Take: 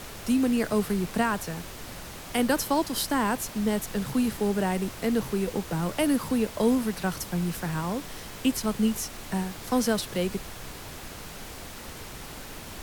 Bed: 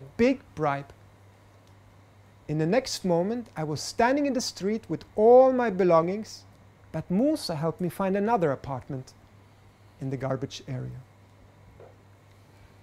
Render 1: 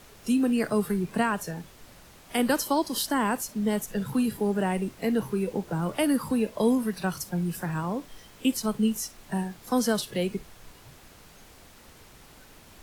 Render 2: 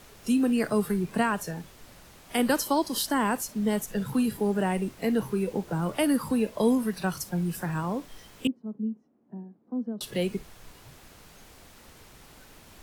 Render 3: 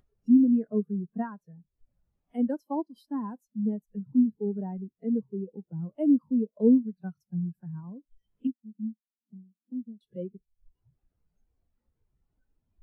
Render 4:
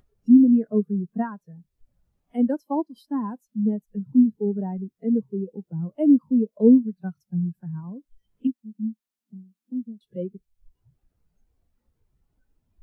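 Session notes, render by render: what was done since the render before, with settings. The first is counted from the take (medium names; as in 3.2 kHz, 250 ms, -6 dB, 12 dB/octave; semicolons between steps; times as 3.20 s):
noise print and reduce 11 dB
8.47–10.01 s: ladder band-pass 280 Hz, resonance 50%
upward compressor, threshold -27 dBFS; spectral contrast expander 2.5:1
trim +5.5 dB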